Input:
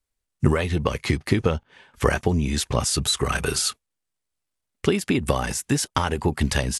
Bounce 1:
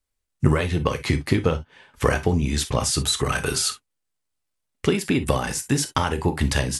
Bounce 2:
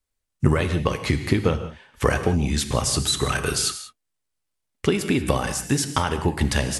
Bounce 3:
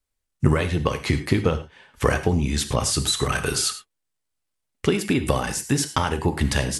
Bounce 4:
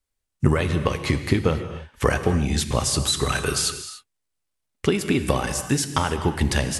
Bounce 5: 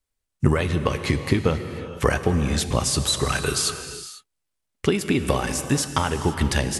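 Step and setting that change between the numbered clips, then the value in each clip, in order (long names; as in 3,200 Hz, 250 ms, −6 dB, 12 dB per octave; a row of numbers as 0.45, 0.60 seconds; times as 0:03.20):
reverb whose tail is shaped and stops, gate: 80, 210, 130, 320, 520 milliseconds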